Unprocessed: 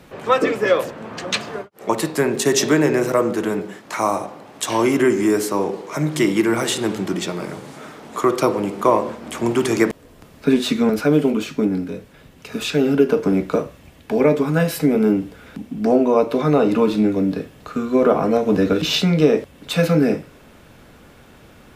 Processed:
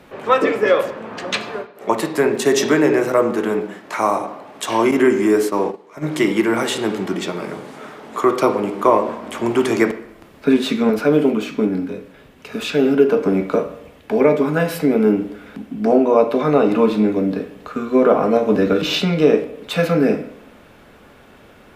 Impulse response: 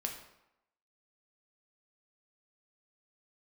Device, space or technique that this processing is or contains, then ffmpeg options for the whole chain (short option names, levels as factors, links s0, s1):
filtered reverb send: -filter_complex "[0:a]asplit=2[s0][s1];[s1]highpass=200,lowpass=4000[s2];[1:a]atrim=start_sample=2205[s3];[s2][s3]afir=irnorm=-1:irlink=0,volume=0.841[s4];[s0][s4]amix=inputs=2:normalize=0,asettb=1/sr,asplit=3[s5][s6][s7];[s5]atrim=end=4.914[s8];[s6]atrim=start=4.91:end=6.05,asetpts=PTS-STARTPTS,afade=t=in:d=0.004:c=qsin,afade=t=out:st=1.136:d=0.004:c=qsin,agate=range=0.178:threshold=0.141:ratio=16:detection=peak[s9];[s7]atrim=start=6.046[s10];[s8][s9]acrossfade=d=0.004:c1=hsin:c2=qsin[s11];[s11][s10]acrossfade=d=0.004:c1=qsin:c2=hsin,volume=0.708"